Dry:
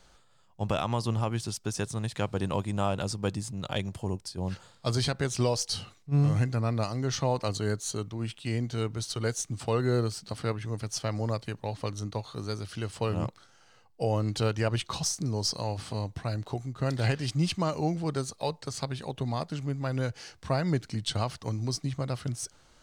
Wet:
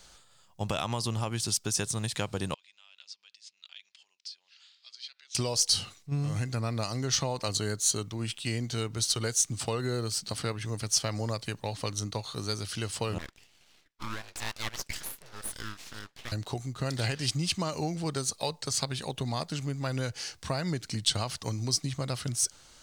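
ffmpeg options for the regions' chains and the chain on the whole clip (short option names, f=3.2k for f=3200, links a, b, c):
-filter_complex "[0:a]asettb=1/sr,asplit=3[a][b][c];[a]atrim=end=2.544[d];[b]atrim=start=2.54:end=5.35,asetpts=PTS-STARTPTS,afade=t=in:d=0.004:c=qsin,afade=t=out:st=2.806:d=0.004:c=qsin,aemphasis=mode=reproduction:type=50kf,acompressor=threshold=-43dB:ratio=4:attack=3.2:release=140:knee=1:detection=peak,asuperpass=centerf=3600:order=4:qfactor=1.1[e];[c]atrim=start=5.346[f];[d][e]acrossfade=d=0.004:c1=hsin:c2=qsin[g];[g][f]acrossfade=d=0.004:c1=qsin:c2=hsin,asettb=1/sr,asplit=3[h][i][j];[h]atrim=end=13.184[k];[i]atrim=start=13.18:end=16.32,asetpts=PTS-STARTPTS,afade=t=in:d=0.004:c=qsin,afade=t=out:st=3.136:d=0.004:c=qsin,highpass=800,lowpass=2.8k,afreqshift=-28,aeval=exprs='abs(val(0))':c=same[l];[j]atrim=start=16.316[m];[k][l]acrossfade=d=0.004:c1=hsin:c2=qsin[n];[n][m]acrossfade=d=0.004:c1=qsin:c2=hsin,acompressor=threshold=-28dB:ratio=6,highshelf=f=2.5k:g=11"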